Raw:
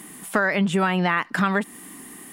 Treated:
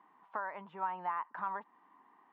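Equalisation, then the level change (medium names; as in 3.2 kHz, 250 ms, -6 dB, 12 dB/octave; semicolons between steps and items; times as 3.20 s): band-pass filter 960 Hz, Q 6.2; distance through air 240 m; -3.5 dB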